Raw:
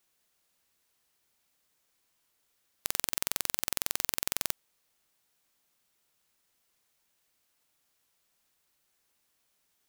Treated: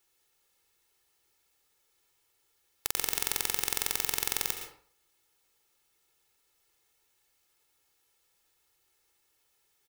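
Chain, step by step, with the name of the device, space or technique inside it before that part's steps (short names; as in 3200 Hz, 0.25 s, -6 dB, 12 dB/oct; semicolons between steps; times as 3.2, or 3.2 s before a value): microphone above a desk (comb 2.3 ms, depth 62%; reverb RT60 0.50 s, pre-delay 0.109 s, DRR 6 dB)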